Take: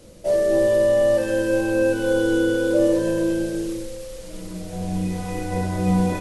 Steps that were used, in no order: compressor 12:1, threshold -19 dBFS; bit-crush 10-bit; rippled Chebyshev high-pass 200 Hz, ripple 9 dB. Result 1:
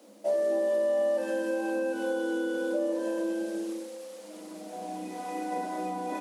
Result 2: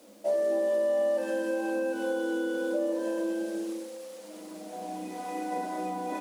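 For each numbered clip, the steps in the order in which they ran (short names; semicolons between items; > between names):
bit-crush > compressor > rippled Chebyshev high-pass; compressor > rippled Chebyshev high-pass > bit-crush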